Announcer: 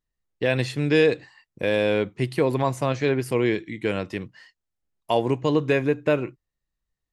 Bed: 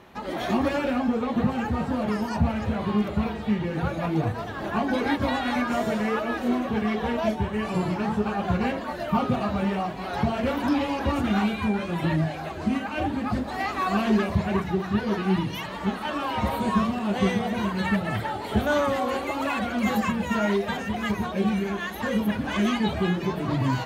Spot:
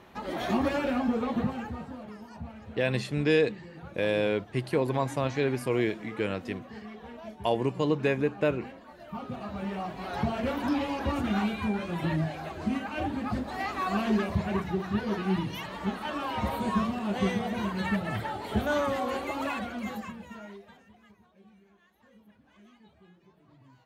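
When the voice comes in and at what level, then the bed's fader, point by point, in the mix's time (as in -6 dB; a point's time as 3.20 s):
2.35 s, -5.0 dB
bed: 1.30 s -3 dB
2.12 s -18 dB
8.92 s -18 dB
10.01 s -4.5 dB
19.46 s -4.5 dB
21.22 s -33.5 dB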